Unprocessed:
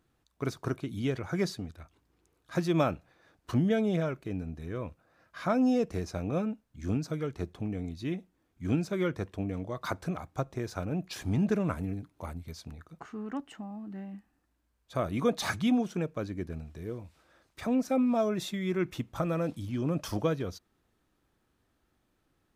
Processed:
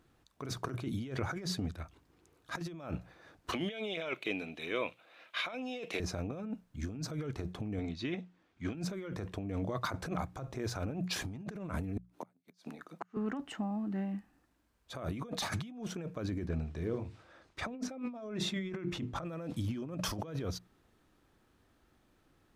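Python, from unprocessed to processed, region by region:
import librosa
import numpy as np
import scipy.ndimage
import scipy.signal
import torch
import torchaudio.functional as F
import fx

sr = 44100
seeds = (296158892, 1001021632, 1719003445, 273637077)

y = fx.chain(x, sr, fx.highpass(hz=410.0, slope=12),
    fx.band_shelf(hz=2900.0, db=13.0, octaves=1.1), at=(3.52, 6.0))
y = fx.chain(y, sr, fx.lowpass(hz=3600.0, slope=12),
    fx.tilt_eq(slope=2.5), at=(7.79, 8.75))
y = fx.chain(y, sr, fx.gate_flip(shuts_db=-30.0, range_db=-36),
    fx.highpass(hz=210.0, slope=24), at=(11.97, 13.17))
y = fx.chain(y, sr, fx.air_absorb(metres=52.0),
    fx.hum_notches(base_hz=50, count=9), at=(16.46, 19.25))
y = fx.high_shelf(y, sr, hz=7700.0, db=-4.5)
y = fx.hum_notches(y, sr, base_hz=60, count=3)
y = fx.over_compress(y, sr, threshold_db=-38.0, ratio=-1.0)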